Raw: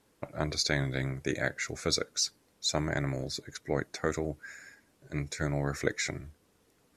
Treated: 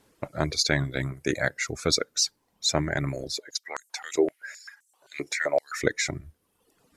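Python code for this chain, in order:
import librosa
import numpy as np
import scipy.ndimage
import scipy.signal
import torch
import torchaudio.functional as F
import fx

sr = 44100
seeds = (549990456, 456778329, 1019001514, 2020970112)

y = fx.dereverb_blind(x, sr, rt60_s=0.91)
y = fx.filter_held_highpass(y, sr, hz=7.7, low_hz=370.0, high_hz=7300.0, at=(3.36, 5.79), fade=0.02)
y = F.gain(torch.from_numpy(y), 5.5).numpy()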